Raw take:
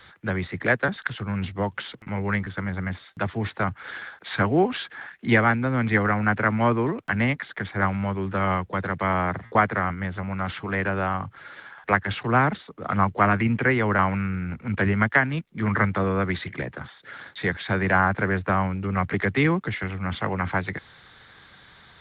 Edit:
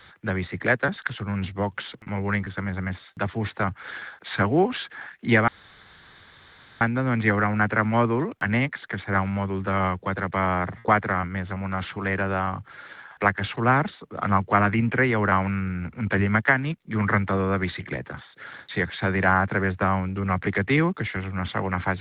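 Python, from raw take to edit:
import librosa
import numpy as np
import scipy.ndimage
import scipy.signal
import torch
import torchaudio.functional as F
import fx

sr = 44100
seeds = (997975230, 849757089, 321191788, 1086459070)

y = fx.edit(x, sr, fx.insert_room_tone(at_s=5.48, length_s=1.33), tone=tone)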